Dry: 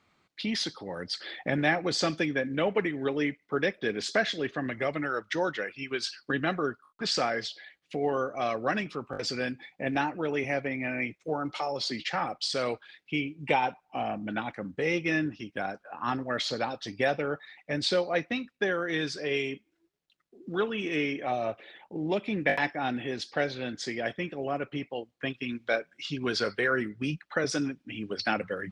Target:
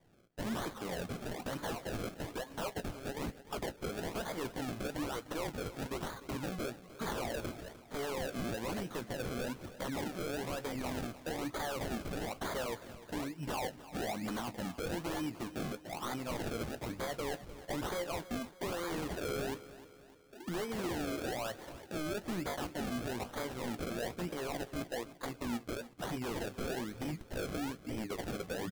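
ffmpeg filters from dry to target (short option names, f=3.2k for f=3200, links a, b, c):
-filter_complex "[0:a]asettb=1/sr,asplit=3[a][b][c];[a]atrim=end=1.574[d];[b]atrim=start=1.57:end=3.73,asetpts=PTS-STARTPTS,afade=t=in:d=0.004:c=qsin,afade=t=out:st=2.156:d=0.004:c=qsin,highpass=850[e];[c]atrim=start=3.726[f];[d][e]acrossfade=d=0.004:c1=hsin:c2=qsin[g];[g][f]acrossfade=d=0.004:c1=qsin:c2=hsin,acompressor=threshold=-33dB:ratio=6,acrusher=samples=32:mix=1:aa=0.000001:lfo=1:lforange=32:lforate=1.1,aeval=exprs='0.0224*(abs(mod(val(0)/0.0224+3,4)-2)-1)':c=same,asplit=2[h][i];[i]adelay=17,volume=-13dB[j];[h][j]amix=inputs=2:normalize=0,aecho=1:1:302|604|906|1208:0.158|0.0777|0.0381|0.0186,volume=1dB"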